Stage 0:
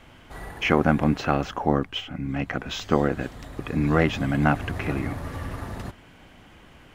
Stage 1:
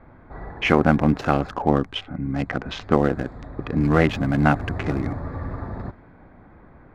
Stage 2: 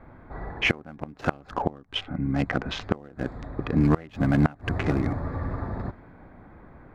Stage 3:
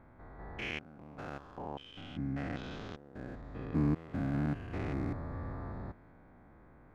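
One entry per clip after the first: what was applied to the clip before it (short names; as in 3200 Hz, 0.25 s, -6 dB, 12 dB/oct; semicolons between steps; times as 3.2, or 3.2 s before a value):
Wiener smoothing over 15 samples; low-pass opened by the level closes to 2500 Hz, open at -21 dBFS; gain +3 dB
flipped gate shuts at -8 dBFS, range -26 dB
stepped spectrum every 0.2 s; gain -8.5 dB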